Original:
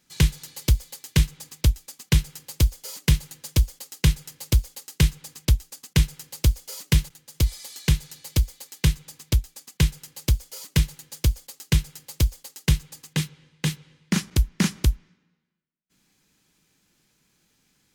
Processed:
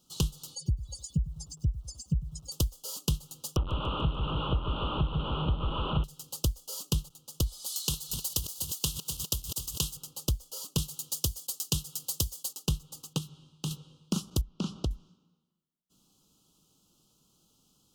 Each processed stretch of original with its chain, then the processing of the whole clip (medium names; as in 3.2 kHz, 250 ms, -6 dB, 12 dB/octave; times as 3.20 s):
0.55–2.52 s: spectral contrast enhancement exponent 3.5 + brick-wall FIR low-pass 11 kHz + bit-crushed delay 100 ms, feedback 35%, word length 8-bit, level -14.5 dB
3.56–6.04 s: one-bit delta coder 16 kbps, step -19.5 dBFS + band-stop 700 Hz, Q 7.1 + modulated delay 147 ms, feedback 58%, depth 66 cents, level -6.5 dB
7.66–9.97 s: backward echo that repeats 126 ms, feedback 78%, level -13 dB + tilt EQ +2.5 dB/octave
10.78–12.53 s: high-pass 79 Hz + treble shelf 2.9 kHz +9.5 dB
13.18–13.71 s: band-stop 490 Hz, Q 5.3 + compression 2:1, threshold -34 dBFS
14.41–14.91 s: low-pass 4.1 kHz + compression 3:1, threshold -24 dBFS
whole clip: compression 3:1, threshold -28 dBFS; Chebyshev band-stop 1.3–2.9 kHz, order 3